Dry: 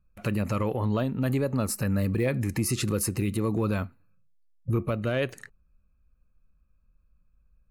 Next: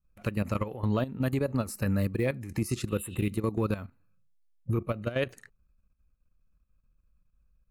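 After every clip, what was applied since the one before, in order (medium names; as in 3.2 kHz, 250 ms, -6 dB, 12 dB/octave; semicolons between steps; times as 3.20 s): spectral replace 2.91–3.22 s, 2.6–7.1 kHz after; level held to a coarse grid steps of 13 dB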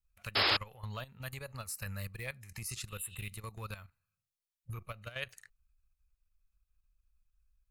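amplifier tone stack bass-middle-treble 10-0-10; painted sound noise, 0.35–0.57 s, 250–5300 Hz -28 dBFS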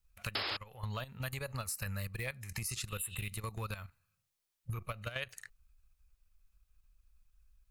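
compression 8:1, threshold -42 dBFS, peak gain reduction 16.5 dB; trim +7 dB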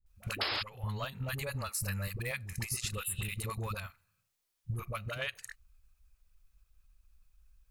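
phase dispersion highs, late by 62 ms, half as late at 540 Hz; trim +3 dB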